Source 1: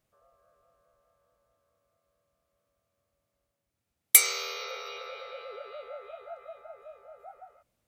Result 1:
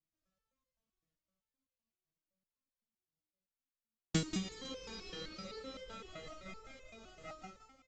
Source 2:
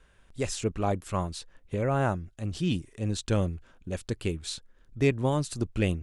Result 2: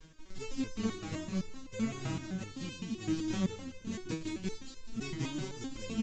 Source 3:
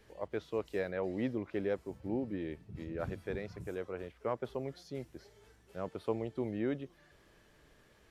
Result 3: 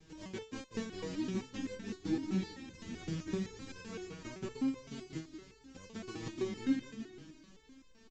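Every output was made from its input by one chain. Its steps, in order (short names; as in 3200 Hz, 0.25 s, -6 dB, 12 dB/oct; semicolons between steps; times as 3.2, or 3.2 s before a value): spectral whitening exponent 0.3; in parallel at -10.5 dB: sample-and-hold 21×; on the sum: downsampling 16000 Hz; compressor 2:1, threshold -46 dBFS; resonant low shelf 410 Hz +12 dB, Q 1.5; echo 0.503 s -17.5 dB; gate with hold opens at -49 dBFS; on a send: feedback echo 0.185 s, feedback 31%, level -4.5 dB; on the sum: stepped resonator 7.8 Hz 160–520 Hz; gain +9.5 dB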